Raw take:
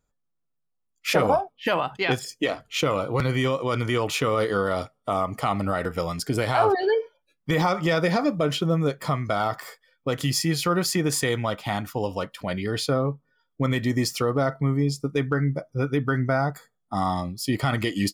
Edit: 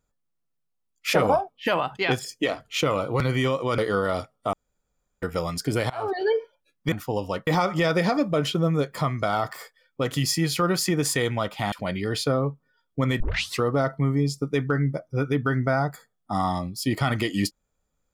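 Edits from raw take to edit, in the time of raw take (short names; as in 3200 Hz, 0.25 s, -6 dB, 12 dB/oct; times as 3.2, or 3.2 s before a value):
3.78–4.4 cut
5.15–5.84 room tone
6.52–6.96 fade in, from -23 dB
11.79–12.34 move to 7.54
13.82 tape start 0.41 s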